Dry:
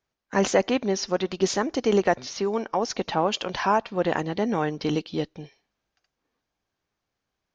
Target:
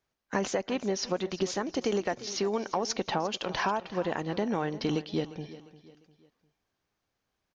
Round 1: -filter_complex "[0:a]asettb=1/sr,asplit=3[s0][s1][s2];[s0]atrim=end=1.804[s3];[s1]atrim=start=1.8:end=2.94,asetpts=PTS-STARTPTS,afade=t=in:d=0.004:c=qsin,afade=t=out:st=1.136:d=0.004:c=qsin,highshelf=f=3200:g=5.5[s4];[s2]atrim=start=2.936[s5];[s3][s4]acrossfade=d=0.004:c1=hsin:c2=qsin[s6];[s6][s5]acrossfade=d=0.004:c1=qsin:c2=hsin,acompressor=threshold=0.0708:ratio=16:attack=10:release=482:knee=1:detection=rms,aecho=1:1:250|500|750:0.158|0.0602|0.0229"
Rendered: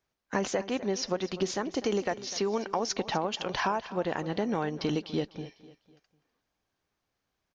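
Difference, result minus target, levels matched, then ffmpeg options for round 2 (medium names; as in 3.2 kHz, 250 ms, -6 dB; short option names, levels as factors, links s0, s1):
echo 101 ms early
-filter_complex "[0:a]asettb=1/sr,asplit=3[s0][s1][s2];[s0]atrim=end=1.804[s3];[s1]atrim=start=1.8:end=2.94,asetpts=PTS-STARTPTS,afade=t=in:d=0.004:c=qsin,afade=t=out:st=1.136:d=0.004:c=qsin,highshelf=f=3200:g=5.5[s4];[s2]atrim=start=2.936[s5];[s3][s4]acrossfade=d=0.004:c1=hsin:c2=qsin[s6];[s6][s5]acrossfade=d=0.004:c1=qsin:c2=hsin,acompressor=threshold=0.0708:ratio=16:attack=10:release=482:knee=1:detection=rms,aecho=1:1:351|702|1053:0.158|0.0602|0.0229"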